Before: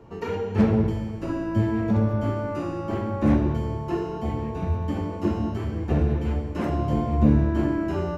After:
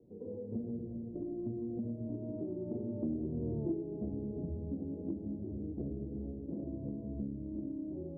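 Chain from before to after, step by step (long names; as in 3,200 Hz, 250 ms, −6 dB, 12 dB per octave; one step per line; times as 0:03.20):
source passing by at 0:03.62, 21 m/s, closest 2.3 metres
Butterworth low-pass 640 Hz 36 dB per octave
parametric band 270 Hz +13 dB 2 octaves
downward compressor 5 to 1, threshold −45 dBFS, peak gain reduction 27.5 dB
level +8.5 dB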